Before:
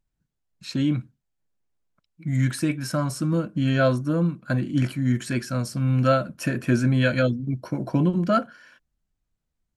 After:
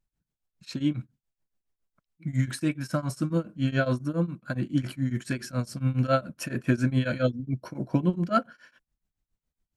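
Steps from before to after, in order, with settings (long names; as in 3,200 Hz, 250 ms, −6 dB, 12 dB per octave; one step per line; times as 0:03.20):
shaped tremolo triangle 7.2 Hz, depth 95%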